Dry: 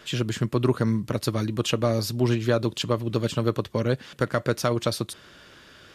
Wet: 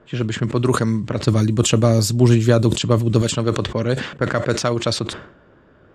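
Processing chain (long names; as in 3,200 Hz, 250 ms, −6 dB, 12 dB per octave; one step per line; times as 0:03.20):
0:01.22–0:03.22: low-shelf EQ 310 Hz +8 dB
low-pass that shuts in the quiet parts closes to 800 Hz, open at −16 dBFS
parametric band 7,600 Hz +13 dB 0.5 octaves
level that may fall only so fast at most 91 dB per second
level +3.5 dB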